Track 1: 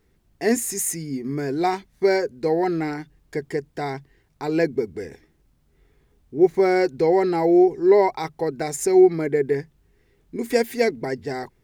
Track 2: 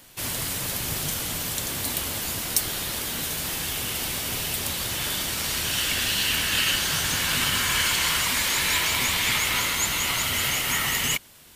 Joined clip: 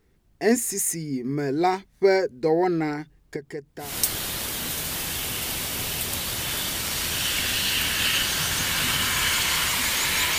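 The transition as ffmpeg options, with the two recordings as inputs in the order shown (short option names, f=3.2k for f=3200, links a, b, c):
-filter_complex "[0:a]asettb=1/sr,asplit=3[a][b][c];[a]atrim=end=3.364[d];[b]atrim=start=3.36:end=3.96,asetpts=PTS-STARTPTS,afade=t=in:d=0.004:c=qsin,afade=t=out:st=0.596:d=0.004:c=qsin,acompressor=threshold=-44dB:ratio=1.5:attack=3.2:release=140:knee=1:detection=peak[e];[c]atrim=start=3.956[f];[d][e]acrossfade=d=0.004:c1=hsin:c2=qsin[g];[g][f]acrossfade=d=0.004:c1=qsin:c2=hsin,apad=whole_dur=10.38,atrim=end=10.38,atrim=end=3.96,asetpts=PTS-STARTPTS[h];[1:a]atrim=start=2.31:end=8.91,asetpts=PTS-STARTPTS[i];[h][i]acrossfade=d=0.18:c1=tri:c2=tri"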